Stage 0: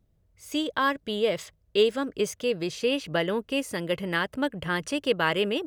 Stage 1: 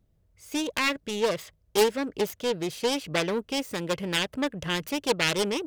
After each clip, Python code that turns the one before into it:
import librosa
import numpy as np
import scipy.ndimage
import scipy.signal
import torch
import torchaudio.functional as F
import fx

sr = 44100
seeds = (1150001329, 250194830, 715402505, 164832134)

y = fx.self_delay(x, sr, depth_ms=0.4)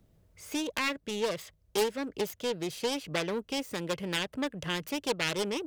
y = fx.band_squash(x, sr, depth_pct=40)
y = F.gain(torch.from_numpy(y), -5.0).numpy()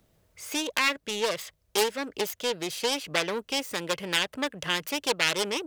y = fx.low_shelf(x, sr, hz=410.0, db=-11.5)
y = F.gain(torch.from_numpy(y), 7.0).numpy()